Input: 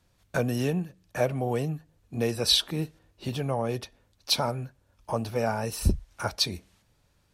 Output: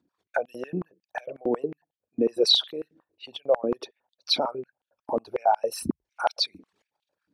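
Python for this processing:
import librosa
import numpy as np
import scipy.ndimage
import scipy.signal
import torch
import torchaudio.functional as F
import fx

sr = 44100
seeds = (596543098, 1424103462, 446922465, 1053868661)

y = fx.envelope_sharpen(x, sr, power=2.0)
y = fx.filter_held_highpass(y, sr, hz=11.0, low_hz=280.0, high_hz=3100.0)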